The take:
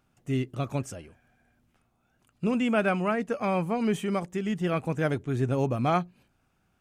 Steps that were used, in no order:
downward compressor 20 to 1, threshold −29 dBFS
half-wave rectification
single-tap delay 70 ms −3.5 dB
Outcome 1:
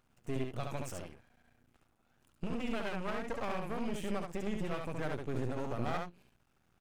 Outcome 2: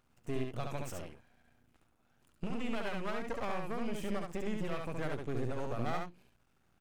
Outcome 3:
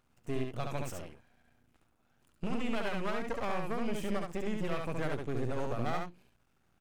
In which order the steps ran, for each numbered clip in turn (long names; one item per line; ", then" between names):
downward compressor, then single-tap delay, then half-wave rectification
downward compressor, then half-wave rectification, then single-tap delay
half-wave rectification, then downward compressor, then single-tap delay